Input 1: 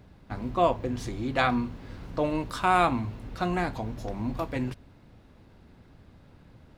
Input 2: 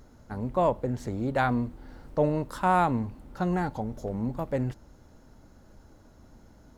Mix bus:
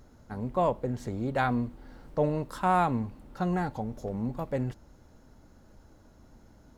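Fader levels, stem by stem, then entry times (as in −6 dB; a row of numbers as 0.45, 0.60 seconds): −18.0, −2.0 decibels; 0.00, 0.00 seconds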